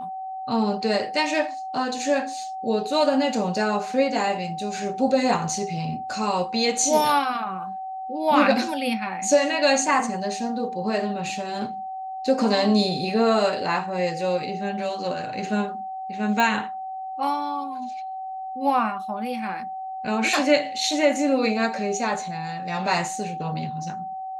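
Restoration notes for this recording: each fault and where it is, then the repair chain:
whistle 760 Hz −30 dBFS
0:16.40: click −9 dBFS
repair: click removal
notch filter 760 Hz, Q 30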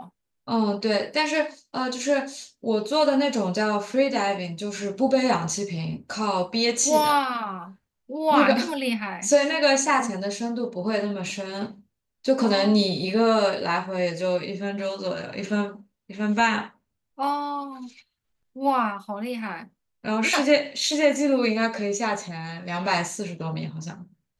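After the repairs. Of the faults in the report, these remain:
none of them is left

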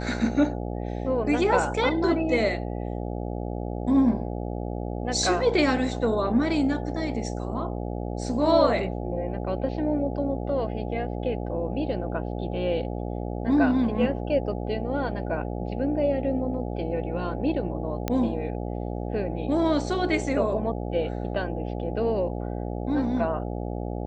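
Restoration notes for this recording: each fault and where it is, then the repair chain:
mains buzz 60 Hz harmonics 14 −31 dBFS
0:18.08: click −12 dBFS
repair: click removal
hum removal 60 Hz, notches 14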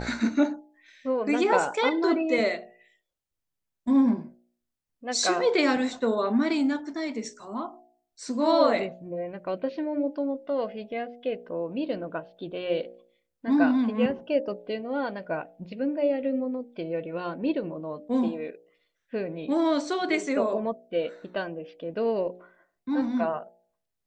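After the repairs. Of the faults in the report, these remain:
none of them is left

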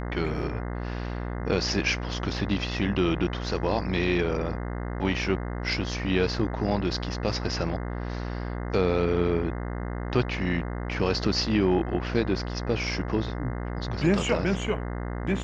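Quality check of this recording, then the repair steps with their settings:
mains buzz 60 Hz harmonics 35 −32 dBFS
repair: hum removal 60 Hz, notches 35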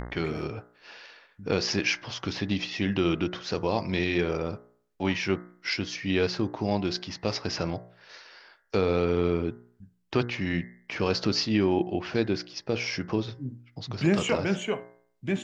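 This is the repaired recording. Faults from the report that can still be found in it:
none of them is left

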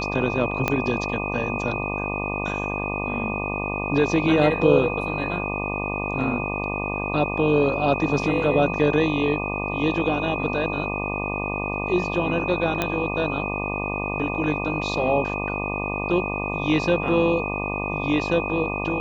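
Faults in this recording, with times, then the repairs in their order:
mains buzz 50 Hz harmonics 24 −29 dBFS
whistle 2,500 Hz −29 dBFS
0:00.68: click −7 dBFS
0:12.82: click −8 dBFS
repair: click removal
notch filter 2,500 Hz, Q 30
hum removal 50 Hz, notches 24

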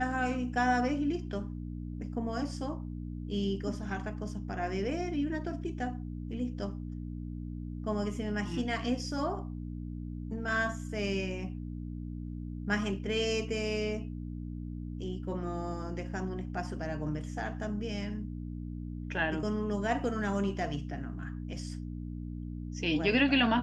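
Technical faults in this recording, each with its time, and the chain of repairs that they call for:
mains hum 60 Hz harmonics 5 −39 dBFS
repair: hum removal 60 Hz, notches 5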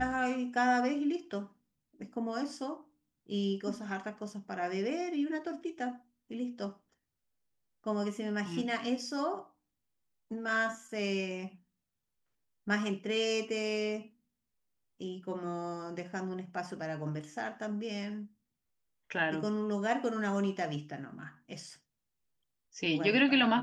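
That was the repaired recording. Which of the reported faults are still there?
none of them is left

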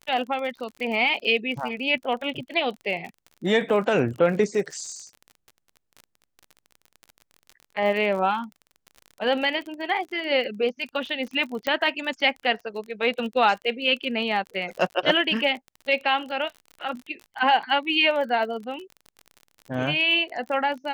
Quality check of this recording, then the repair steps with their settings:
surface crackle 38 per second −33 dBFS
0:11.67: click −12 dBFS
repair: click removal

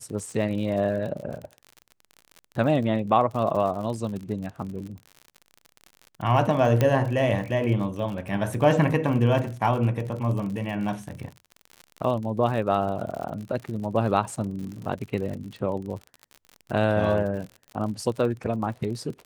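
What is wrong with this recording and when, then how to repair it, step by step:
surface crackle 59 per second −33 dBFS
0:06.81: click −9 dBFS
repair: click removal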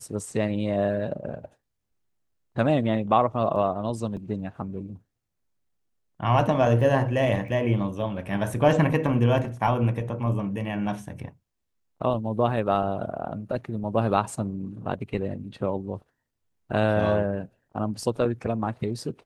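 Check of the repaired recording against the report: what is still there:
0:06.81: click

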